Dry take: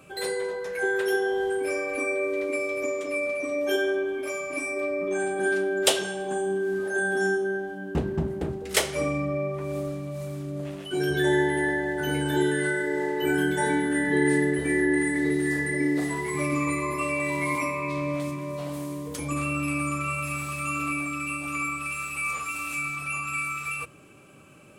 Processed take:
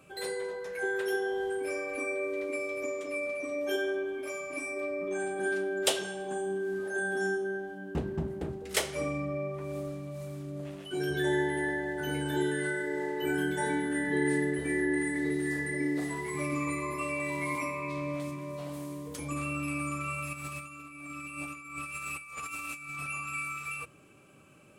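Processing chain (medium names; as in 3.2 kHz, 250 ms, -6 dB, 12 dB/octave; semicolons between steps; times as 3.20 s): 20.33–23.08 s: compressor with a negative ratio -34 dBFS, ratio -0.5; trim -6 dB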